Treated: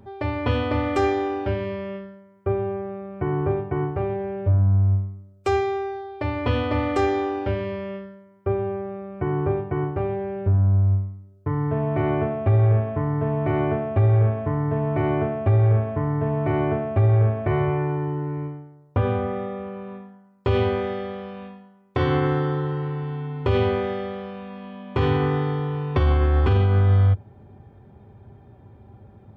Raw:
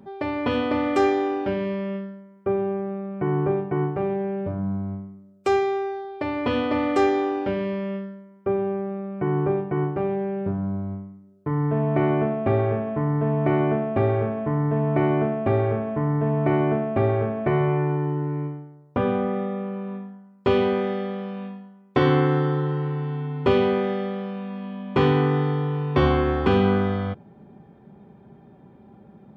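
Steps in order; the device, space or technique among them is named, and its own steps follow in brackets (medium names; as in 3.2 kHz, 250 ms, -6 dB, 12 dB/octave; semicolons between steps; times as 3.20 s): car stereo with a boomy subwoofer (resonant low shelf 130 Hz +9 dB, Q 3; peak limiter -11.5 dBFS, peak gain reduction 8 dB)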